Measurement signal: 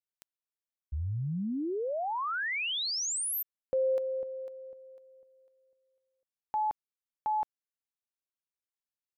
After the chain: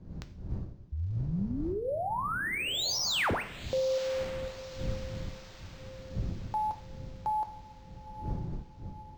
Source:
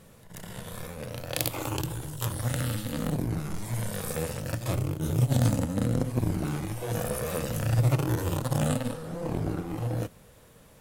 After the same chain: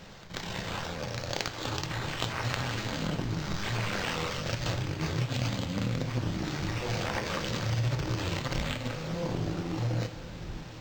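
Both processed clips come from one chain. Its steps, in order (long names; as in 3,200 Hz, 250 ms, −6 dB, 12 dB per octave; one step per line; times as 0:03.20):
wind on the microphone 120 Hz −40 dBFS
flat-topped bell 6,800 Hz +14 dB
downward compressor 4 to 1, threshold −29 dBFS
feedback delay with all-pass diffusion 963 ms, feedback 52%, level −14.5 dB
coupled-rooms reverb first 0.51 s, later 4.8 s, from −28 dB, DRR 7.5 dB
linearly interpolated sample-rate reduction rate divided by 4×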